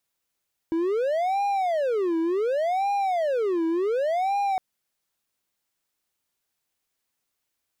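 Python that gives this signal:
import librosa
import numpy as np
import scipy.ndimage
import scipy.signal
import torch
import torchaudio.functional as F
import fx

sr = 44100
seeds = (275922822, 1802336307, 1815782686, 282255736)

y = fx.siren(sr, length_s=3.86, kind='wail', low_hz=326.0, high_hz=808.0, per_s=0.68, wave='triangle', level_db=-19.5)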